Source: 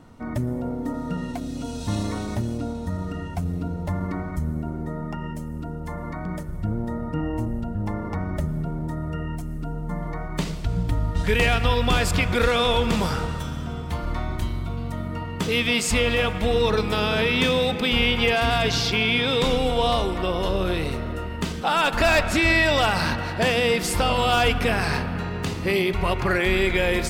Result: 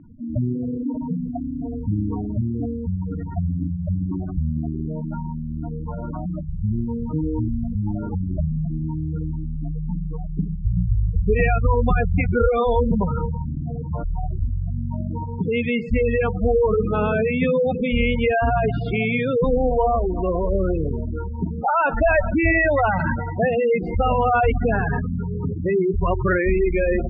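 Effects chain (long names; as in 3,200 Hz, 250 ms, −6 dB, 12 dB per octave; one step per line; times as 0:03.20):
0:13.53–0:14.31: comb filter 6.8 ms, depth 31%
gate on every frequency bin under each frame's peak −10 dB strong
low-pass filter 2,100 Hz 24 dB per octave
level +4 dB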